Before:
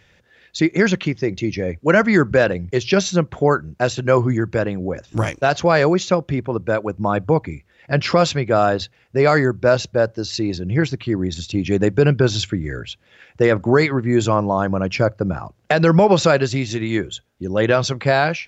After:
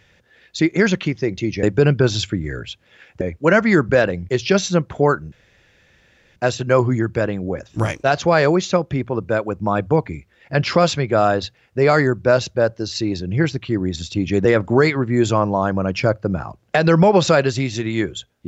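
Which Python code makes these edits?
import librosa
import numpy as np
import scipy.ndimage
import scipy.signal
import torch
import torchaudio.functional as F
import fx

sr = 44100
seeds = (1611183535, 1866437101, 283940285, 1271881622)

y = fx.edit(x, sr, fx.insert_room_tone(at_s=3.74, length_s=1.04),
    fx.move(start_s=11.83, length_s=1.58, to_s=1.63), tone=tone)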